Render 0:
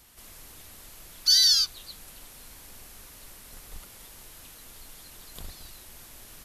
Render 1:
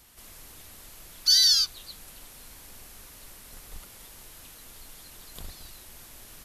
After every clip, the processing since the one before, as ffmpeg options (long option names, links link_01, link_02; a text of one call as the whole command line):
ffmpeg -i in.wav -af anull out.wav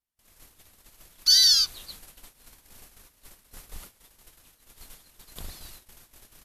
ffmpeg -i in.wav -af "agate=range=-37dB:threshold=-45dB:ratio=16:detection=peak,volume=1.5dB" out.wav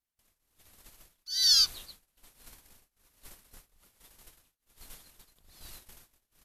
ffmpeg -i in.wav -af "tremolo=f=1.2:d=0.96" out.wav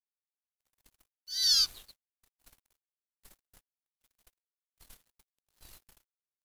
ffmpeg -i in.wav -af "aeval=exprs='sgn(val(0))*max(abs(val(0))-0.00251,0)':channel_layout=same,volume=-2.5dB" out.wav